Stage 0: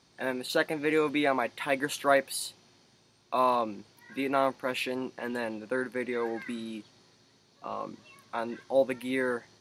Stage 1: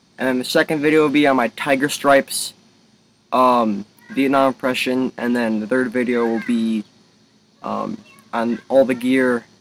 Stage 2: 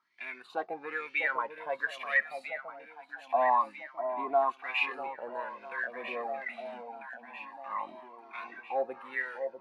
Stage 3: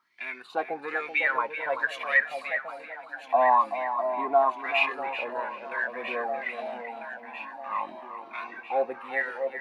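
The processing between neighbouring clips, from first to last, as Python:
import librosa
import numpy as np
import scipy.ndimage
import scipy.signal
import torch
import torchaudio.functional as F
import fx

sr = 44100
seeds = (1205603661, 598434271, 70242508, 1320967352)

y1 = fx.peak_eq(x, sr, hz=210.0, db=10.0, octaves=0.58)
y1 = fx.leveller(y1, sr, passes=1)
y1 = y1 * 10.0 ** (7.5 / 20.0)
y2 = fx.wah_lfo(y1, sr, hz=1.1, low_hz=680.0, high_hz=2400.0, q=6.5)
y2 = fx.echo_alternate(y2, sr, ms=648, hz=920.0, feedback_pct=72, wet_db=-7.5)
y2 = fx.comb_cascade(y2, sr, direction='rising', hz=0.25)
y2 = y2 * 10.0 ** (1.0 / 20.0)
y3 = fx.echo_feedback(y2, sr, ms=383, feedback_pct=18, wet_db=-10.0)
y3 = y3 * 10.0 ** (5.0 / 20.0)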